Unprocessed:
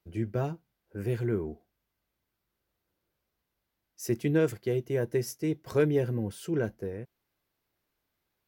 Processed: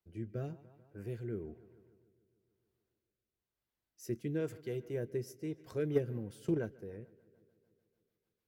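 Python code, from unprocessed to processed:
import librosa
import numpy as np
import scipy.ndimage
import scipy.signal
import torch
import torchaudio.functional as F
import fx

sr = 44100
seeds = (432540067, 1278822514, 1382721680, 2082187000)

y = fx.echo_filtered(x, sr, ms=147, feedback_pct=69, hz=4300.0, wet_db=-21.0)
y = fx.rotary_switch(y, sr, hz=1.0, then_hz=6.7, switch_at_s=5.41)
y = fx.transient(y, sr, attack_db=11, sustain_db=-1, at=(5.94, 6.57), fade=0.02)
y = y * librosa.db_to_amplitude(-8.0)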